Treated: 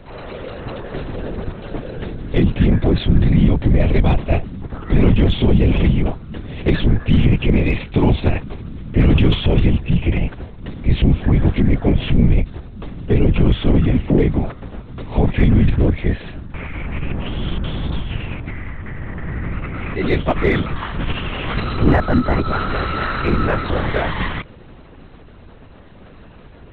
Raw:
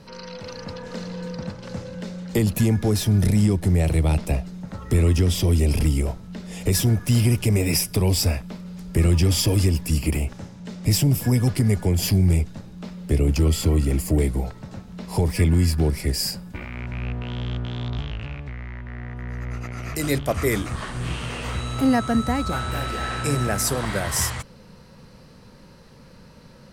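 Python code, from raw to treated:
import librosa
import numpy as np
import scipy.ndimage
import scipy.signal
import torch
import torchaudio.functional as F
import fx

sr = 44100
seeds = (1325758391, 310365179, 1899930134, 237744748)

p1 = fx.lpc_vocoder(x, sr, seeds[0], excitation='whisper', order=10)
p2 = np.clip(p1, -10.0 ** (-17.0 / 20.0), 10.0 ** (-17.0 / 20.0))
p3 = p1 + F.gain(torch.from_numpy(p2), -8.5).numpy()
y = F.gain(torch.from_numpy(p3), 3.5).numpy()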